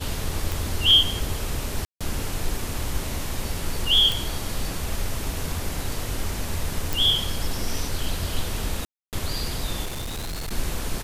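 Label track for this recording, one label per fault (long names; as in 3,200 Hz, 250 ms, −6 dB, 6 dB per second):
0.520000	0.520000	click
1.850000	2.010000	drop-out 156 ms
4.120000	4.120000	click
6.930000	6.930000	click
8.850000	9.130000	drop-out 278 ms
9.850000	10.520000	clipping −27.5 dBFS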